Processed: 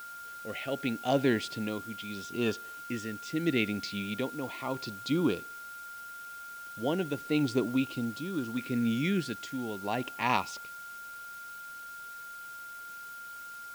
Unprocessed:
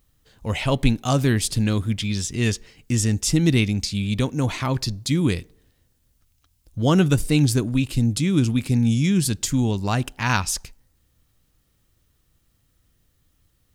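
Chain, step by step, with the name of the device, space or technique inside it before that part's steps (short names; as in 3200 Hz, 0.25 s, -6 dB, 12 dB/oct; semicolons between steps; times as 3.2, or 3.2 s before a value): shortwave radio (BPF 330–2600 Hz; tremolo 0.78 Hz, depth 61%; LFO notch saw up 0.35 Hz 790–2300 Hz; whine 1400 Hz -42 dBFS; white noise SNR 20 dB)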